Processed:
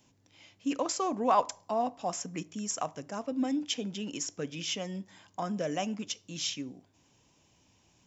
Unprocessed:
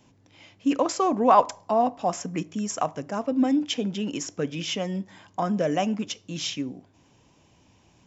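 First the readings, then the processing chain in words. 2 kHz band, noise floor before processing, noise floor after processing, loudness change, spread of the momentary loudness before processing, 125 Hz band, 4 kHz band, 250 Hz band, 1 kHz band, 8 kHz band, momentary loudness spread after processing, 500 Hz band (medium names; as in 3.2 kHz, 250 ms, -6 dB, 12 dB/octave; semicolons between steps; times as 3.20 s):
-6.0 dB, -60 dBFS, -67 dBFS, -7.5 dB, 11 LU, -8.5 dB, -3.5 dB, -8.5 dB, -8.0 dB, no reading, 10 LU, -8.5 dB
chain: treble shelf 3.5 kHz +9.5 dB; trim -8.5 dB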